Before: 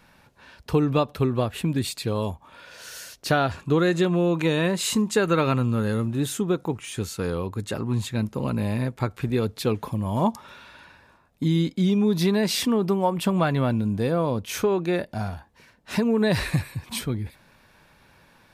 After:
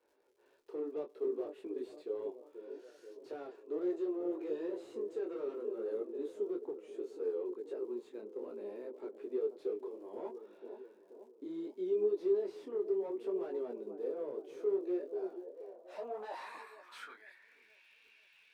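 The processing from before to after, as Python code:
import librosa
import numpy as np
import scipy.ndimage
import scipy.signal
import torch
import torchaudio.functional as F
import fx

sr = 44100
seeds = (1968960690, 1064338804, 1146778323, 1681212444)

y = scipy.signal.sosfilt(scipy.signal.cheby2(4, 40, 150.0, 'highpass', fs=sr, output='sos'), x)
y = fx.high_shelf(y, sr, hz=2700.0, db=11.5)
y = fx.echo_wet_lowpass(y, sr, ms=483, feedback_pct=59, hz=740.0, wet_db=-12.5)
y = np.clip(10.0 ** (24.5 / 20.0) * y, -1.0, 1.0) / 10.0 ** (24.5 / 20.0)
y = fx.filter_sweep_bandpass(y, sr, from_hz=400.0, to_hz=2600.0, start_s=15.35, end_s=17.83, q=5.2)
y = fx.dmg_crackle(y, sr, seeds[0], per_s=110.0, level_db=-60.0)
y = fx.detune_double(y, sr, cents=23)
y = y * 10.0 ** (1.0 / 20.0)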